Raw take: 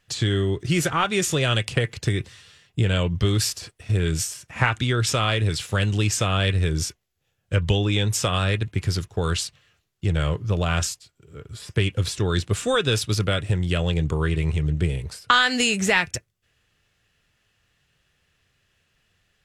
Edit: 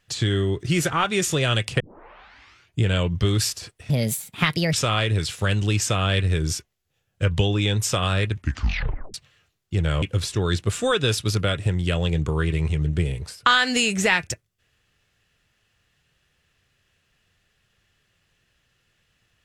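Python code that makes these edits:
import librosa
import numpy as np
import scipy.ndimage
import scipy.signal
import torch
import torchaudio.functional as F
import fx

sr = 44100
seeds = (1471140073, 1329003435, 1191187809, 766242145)

y = fx.edit(x, sr, fx.tape_start(start_s=1.8, length_s=1.02),
    fx.speed_span(start_s=3.9, length_s=1.14, speed=1.37),
    fx.tape_stop(start_s=8.6, length_s=0.85),
    fx.cut(start_s=10.33, length_s=1.53), tone=tone)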